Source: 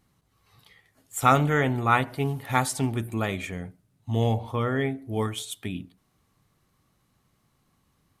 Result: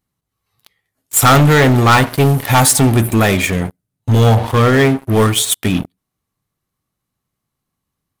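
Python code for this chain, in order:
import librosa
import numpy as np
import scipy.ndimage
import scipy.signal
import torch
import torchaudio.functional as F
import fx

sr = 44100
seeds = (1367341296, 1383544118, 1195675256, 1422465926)

y = fx.high_shelf(x, sr, hz=9000.0, db=8.5)
y = fx.leveller(y, sr, passes=5)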